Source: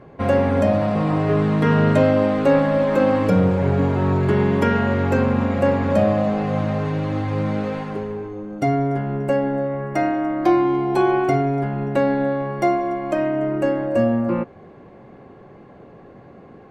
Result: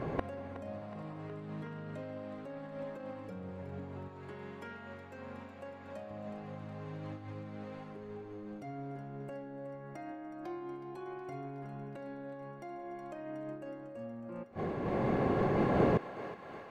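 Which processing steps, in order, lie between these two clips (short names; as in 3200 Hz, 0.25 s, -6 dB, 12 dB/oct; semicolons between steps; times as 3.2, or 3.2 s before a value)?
recorder AGC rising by 5.9 dB/s; 4.08–6.11 low shelf 450 Hz -10 dB; limiter -12.5 dBFS, peak gain reduction 8 dB; flipped gate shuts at -25 dBFS, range -31 dB; thinning echo 0.368 s, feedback 75%, high-pass 630 Hz, level -11 dB; noise-modulated level, depth 55%; gain +10.5 dB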